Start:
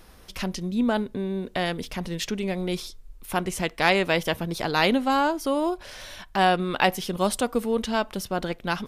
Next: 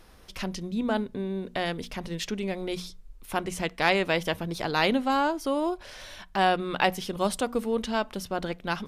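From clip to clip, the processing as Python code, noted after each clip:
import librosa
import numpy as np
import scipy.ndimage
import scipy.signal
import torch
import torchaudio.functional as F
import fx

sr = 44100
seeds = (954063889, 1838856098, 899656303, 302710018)

y = fx.high_shelf(x, sr, hz=11000.0, db=-6.5)
y = fx.hum_notches(y, sr, base_hz=60, count=4)
y = y * librosa.db_to_amplitude(-2.5)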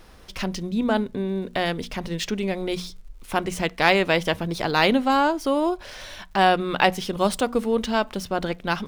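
y = scipy.ndimage.median_filter(x, 3, mode='constant')
y = fx.dmg_crackle(y, sr, seeds[0], per_s=120.0, level_db=-53.0)
y = y * librosa.db_to_amplitude(5.0)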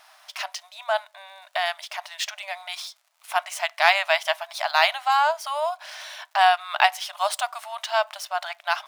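y = fx.brickwall_highpass(x, sr, low_hz=590.0)
y = y * librosa.db_to_amplitude(1.5)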